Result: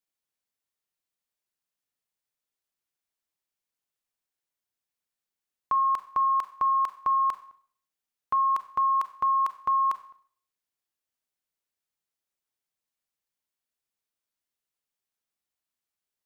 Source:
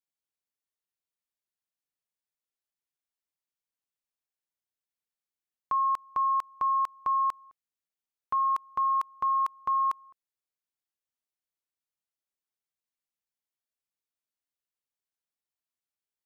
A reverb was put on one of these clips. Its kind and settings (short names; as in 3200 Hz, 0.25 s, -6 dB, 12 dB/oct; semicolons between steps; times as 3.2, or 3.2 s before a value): Schroeder reverb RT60 0.52 s, combs from 30 ms, DRR 11.5 dB; gain +3 dB